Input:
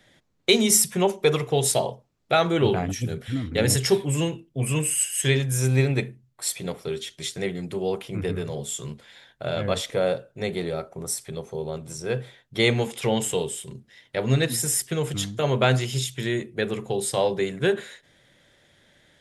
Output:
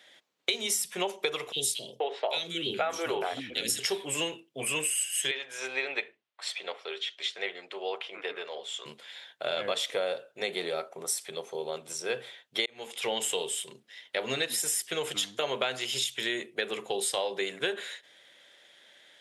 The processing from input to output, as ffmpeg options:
-filter_complex "[0:a]asettb=1/sr,asplit=3[s0][s1][s2];[s0]atrim=end=1.524[s3];[s1]atrim=start=1.52:end=3.79,asetpts=PTS-STARTPTS,afade=t=in:d=0.004:c=qsin,afade=t=out:st=2.266:d=0.004:c=qsin,acrossover=split=330|2500[s4][s5][s6];[s4]adelay=40[s7];[s5]adelay=480[s8];[s7][s8][s6]amix=inputs=3:normalize=0,atrim=end_sample=100107[s9];[s2]atrim=start=3.786[s10];[s3][s9]acrossfade=d=0.004:c1=hsin:c2=qsin[s11];[s11][s10]acrossfade=d=0.004:c1=qsin:c2=hsin,asettb=1/sr,asplit=3[s12][s13][s14];[s12]atrim=end=5.314[s15];[s13]atrim=start=5.31:end=8.86,asetpts=PTS-STARTPTS,afade=t=in:d=0.004:c=qsin,afade=t=out:st=3.546:d=0.004:c=qsin,highpass=540,lowpass=3500[s16];[s14]atrim=start=8.856[s17];[s15][s16]acrossfade=d=0.004:c1=hsin:c2=qsin[s18];[s18][s17]acrossfade=d=0.004:c1=qsin:c2=hsin,asplit=2[s19][s20];[s19]atrim=end=12.66,asetpts=PTS-STARTPTS,afade=t=out:st=12.656:d=0.004:c=hsin[s21];[s20]atrim=start=12.66,asetpts=PTS-STARTPTS,afade=t=in:d=0.81:c=qsin[s22];[s21][s22]concat=n=2:v=0:a=1,highpass=470,equalizer=f=3100:w=1.4:g=6,acompressor=threshold=0.0501:ratio=10"

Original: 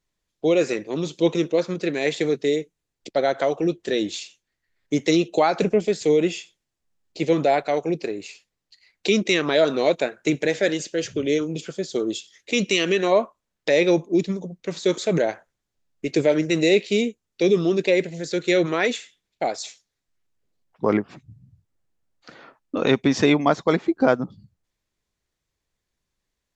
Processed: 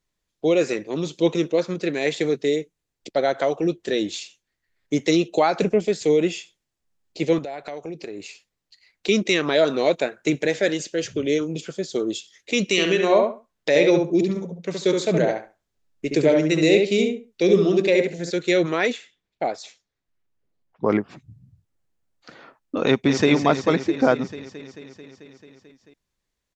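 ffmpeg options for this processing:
-filter_complex "[0:a]asettb=1/sr,asplit=3[s0][s1][s2];[s0]atrim=end=7.384[s3];[s1]atrim=start=7.38:end=9.09,asetpts=PTS-STARTPTS,afade=t=in:d=0.004:c=qsin,afade=t=out:st=1.706:d=0.004:c=qsin,acompressor=threshold=0.0355:ratio=8:attack=3.2:release=140:knee=1:detection=peak[s4];[s2]atrim=start=9.086[s5];[s3][s4]acrossfade=d=0.004:c1=hsin:c2=qsin[s6];[s6][s5]acrossfade=d=0.004:c1=qsin:c2=hsin,asplit=3[s7][s8][s9];[s7]afade=t=out:st=12.76:d=0.02[s10];[s8]asplit=2[s11][s12];[s12]adelay=70,lowpass=f=2500:p=1,volume=0.668,asplit=2[s13][s14];[s14]adelay=70,lowpass=f=2500:p=1,volume=0.21,asplit=2[s15][s16];[s16]adelay=70,lowpass=f=2500:p=1,volume=0.21[s17];[s11][s13][s15][s17]amix=inputs=4:normalize=0,afade=t=in:st=12.76:d=0.02,afade=t=out:st=18.29:d=0.02[s18];[s9]afade=t=in:st=18.29:d=0.02[s19];[s10][s18][s19]amix=inputs=3:normalize=0,asettb=1/sr,asplit=3[s20][s21][s22];[s20]atrim=end=18.924[s23];[s21]atrim=start=18.92:end=20.9,asetpts=PTS-STARTPTS,afade=t=in:d=0.004:c=qsin,afade=t=out:st=1.976:d=0.004:c=qsin,lowpass=f=2500:p=1[s24];[s22]atrim=start=20.896[s25];[s23][s24]acrossfade=d=0.004:c1=hsin:c2=qsin[s26];[s26][s25]acrossfade=d=0.004:c1=qsin:c2=hsin,asplit=2[s27][s28];[s28]afade=t=in:st=22.85:d=0.01,afade=t=out:st=23.29:d=0.01,aecho=0:1:220|440|660|880|1100|1320|1540|1760|1980|2200|2420|2640:0.398107|0.29858|0.223935|0.167951|0.125964|0.0944727|0.0708545|0.0531409|0.0398557|0.0298918|0.0224188|0.0168141[s29];[s27][s29]amix=inputs=2:normalize=0"

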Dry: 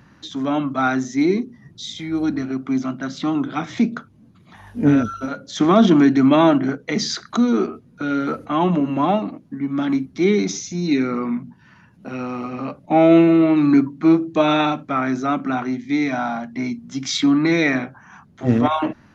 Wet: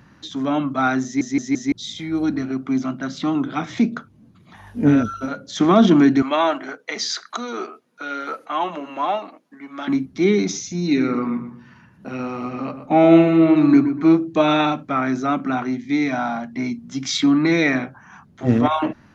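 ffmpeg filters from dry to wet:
-filter_complex "[0:a]asettb=1/sr,asplit=3[s0][s1][s2];[s0]atrim=end=6.224[s3];[s1]atrim=start=6.22:end=9.88,asetpts=PTS-STARTPTS,afade=t=in:d=0.004:c=qsin,afade=t=out:st=3.656:d=0.004:c=qsin,highpass=630[s4];[s2]atrim=start=9.876[s5];[s3][s4]acrossfade=d=0.004:c1=hsin:c2=qsin[s6];[s6][s5]acrossfade=d=0.004:c1=qsin:c2=hsin,asettb=1/sr,asplit=3[s7][s8][s9];[s7]atrim=end=10.844[s10];[s8]atrim=start=10.84:end=14.03,asetpts=PTS-STARTPTS,afade=t=in:d=0.004:c=qsin,afade=t=out:st=3.186:d=0.004:c=qsin,asplit=2[s11][s12];[s12]adelay=122,lowpass=f=2000:p=1,volume=0.355,asplit=2[s13][s14];[s14]adelay=122,lowpass=f=2000:p=1,volume=0.33,asplit=2[s15][s16];[s16]adelay=122,lowpass=f=2000:p=1,volume=0.33,asplit=2[s17][s18];[s18]adelay=122,lowpass=f=2000:p=1,volume=0.33[s19];[s11][s13][s15][s17][s19]amix=inputs=5:normalize=0,atrim=end_sample=140679[s20];[s9]atrim=start=14.026[s21];[s10][s20]acrossfade=d=0.004:c1=hsin:c2=qsin[s22];[s22][s21]acrossfade=d=0.004:c1=qsin:c2=hsin,asplit=5[s23][s24][s25][s26][s27];[s23]atrim=end=1.212[s28];[s24]atrim=start=1.038:end=1.212[s29];[s25]atrim=start=1.038:end=1.212[s30];[s26]atrim=start=1.038:end=1.212[s31];[s27]atrim=start=1.718[s32];[s28][s29]acrossfade=d=0.004:c1=hsin:c2=hsin[s33];[s33][s30]acrossfade=d=0.004:c1=hsin:c2=hsin[s34];[s34][s31]acrossfade=d=0.004:c1=hsin:c2=hsin[s35];[s35][s32]acrossfade=d=0.004:c1=hsin:c2=hsin"

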